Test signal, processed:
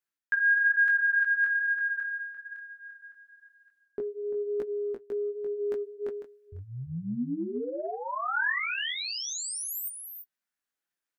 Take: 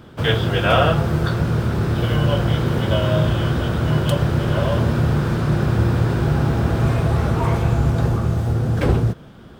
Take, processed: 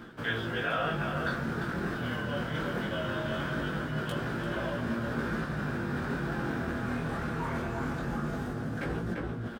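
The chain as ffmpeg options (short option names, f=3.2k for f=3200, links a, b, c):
-filter_complex "[0:a]asplit=2[a][b];[b]adelay=344,volume=-7dB,highshelf=f=4k:g=-7.74[c];[a][c]amix=inputs=2:normalize=0,flanger=delay=5.7:depth=2.9:regen=-52:speed=1.1:shape=sinusoidal,lowshelf=f=330:g=-3,flanger=delay=17:depth=7.8:speed=0.21,areverse,acompressor=threshold=-40dB:ratio=4,areverse,equalizer=f=100:t=o:w=0.67:g=-7,equalizer=f=250:t=o:w=0.67:g=7,equalizer=f=1.6k:t=o:w=0.67:g=9,volume=6.5dB"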